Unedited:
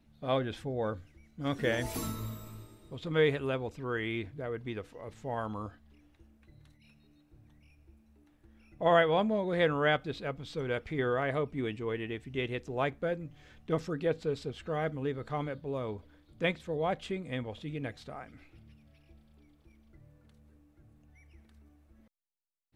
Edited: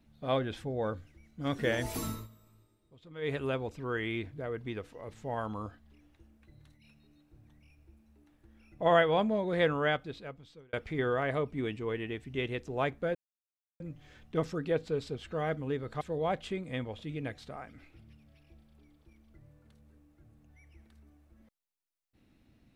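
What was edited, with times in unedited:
2.13–3.36 dip -16 dB, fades 0.15 s
9.67–10.73 fade out
13.15 insert silence 0.65 s
15.36–16.6 cut

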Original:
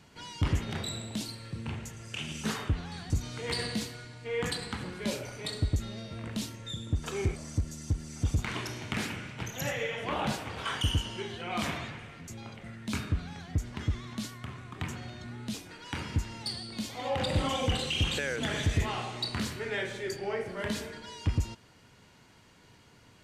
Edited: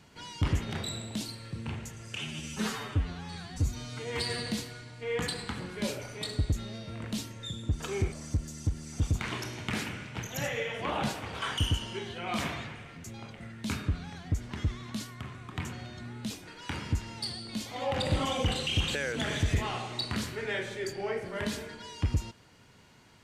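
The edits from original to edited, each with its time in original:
2.17–3.7 stretch 1.5×

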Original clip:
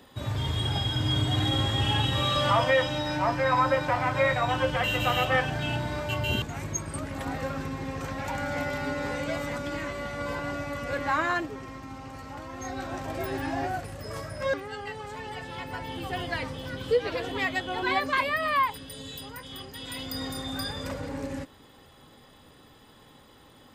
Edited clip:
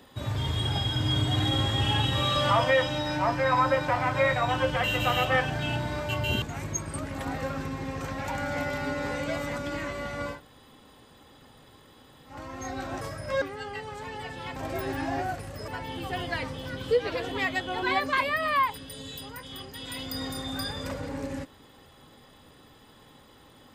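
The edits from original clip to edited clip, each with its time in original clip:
10.33–12.32 room tone, crossfade 0.16 s
13.01–14.13 move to 15.68

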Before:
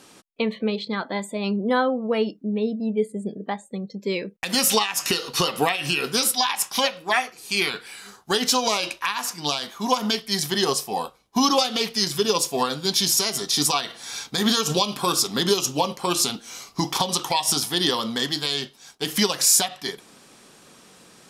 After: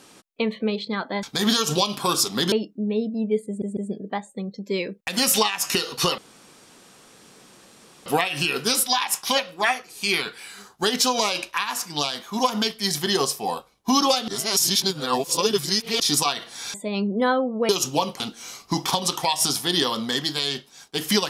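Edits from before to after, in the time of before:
1.23–2.18 swap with 14.22–15.51
3.13 stutter 0.15 s, 3 plays
5.54 insert room tone 1.88 s
11.76–13.48 reverse
16.02–16.27 cut

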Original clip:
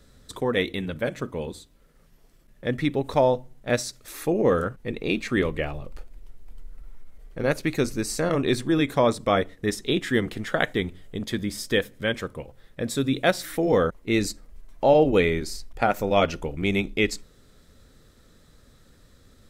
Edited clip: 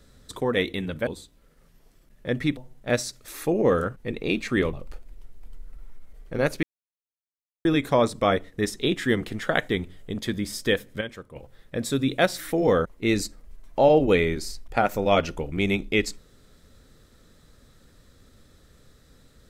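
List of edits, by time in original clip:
1.07–1.45 cut
2.95–3.37 cut
5.53–5.78 cut
7.68–8.7 mute
12.06–12.41 gain -9 dB

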